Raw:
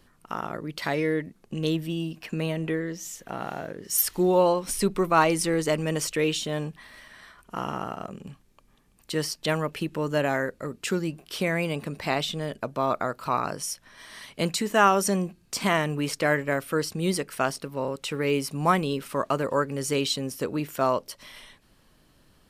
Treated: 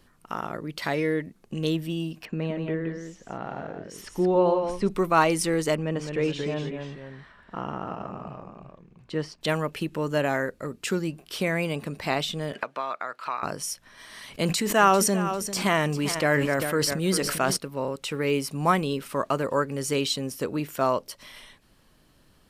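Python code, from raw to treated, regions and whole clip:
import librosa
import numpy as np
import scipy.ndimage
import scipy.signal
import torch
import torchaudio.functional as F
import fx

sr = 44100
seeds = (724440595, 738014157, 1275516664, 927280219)

y = fx.chain(x, sr, fx.spacing_loss(db_at_10k=24),
    fx.echo_single(ms=173, db=-6.0), at=(2.25, 4.89))
y = fx.chain(y, sr, fx.echo_pitch(ms=203, semitones=-1, count=2, db_per_echo=-6.0),
    fx.spacing_loss(db_at_10k=23), at=(5.75, 9.41))
y = fx.chain(y, sr, fx.bandpass_q(hz=2100.0, q=0.9),
    fx.band_squash(depth_pct=100), at=(12.53, 13.43))
y = fx.chain(y, sr, fx.echo_feedback(ms=396, feedback_pct=16, wet_db=-14.5),
    fx.sustainer(db_per_s=33.0), at=(14.16, 17.57))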